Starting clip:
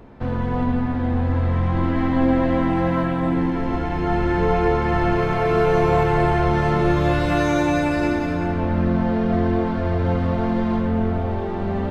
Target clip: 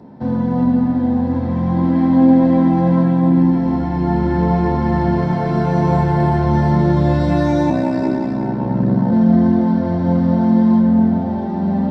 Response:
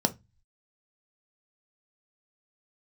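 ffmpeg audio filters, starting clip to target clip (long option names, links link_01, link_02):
-filter_complex "[0:a]asplit=3[link_01][link_02][link_03];[link_01]afade=type=out:start_time=7.69:duration=0.02[link_04];[link_02]aeval=exprs='val(0)*sin(2*PI*32*n/s)':channel_layout=same,afade=type=in:start_time=7.69:duration=0.02,afade=type=out:start_time=9.1:duration=0.02[link_05];[link_03]afade=type=in:start_time=9.1:duration=0.02[link_06];[link_04][link_05][link_06]amix=inputs=3:normalize=0[link_07];[1:a]atrim=start_sample=2205[link_08];[link_07][link_08]afir=irnorm=-1:irlink=0,volume=-10.5dB"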